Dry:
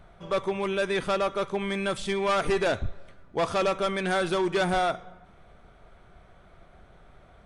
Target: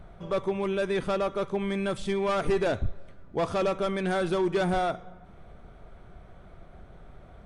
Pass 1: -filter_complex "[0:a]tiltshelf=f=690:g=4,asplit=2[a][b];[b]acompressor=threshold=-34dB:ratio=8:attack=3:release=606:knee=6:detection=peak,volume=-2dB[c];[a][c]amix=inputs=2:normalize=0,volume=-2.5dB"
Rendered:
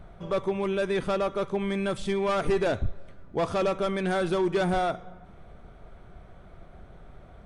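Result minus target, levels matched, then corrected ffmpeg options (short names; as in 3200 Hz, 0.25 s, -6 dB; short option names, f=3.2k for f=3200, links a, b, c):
compressor: peak gain reduction -6 dB
-filter_complex "[0:a]tiltshelf=f=690:g=4,asplit=2[a][b];[b]acompressor=threshold=-41dB:ratio=8:attack=3:release=606:knee=6:detection=peak,volume=-2dB[c];[a][c]amix=inputs=2:normalize=0,volume=-2.5dB"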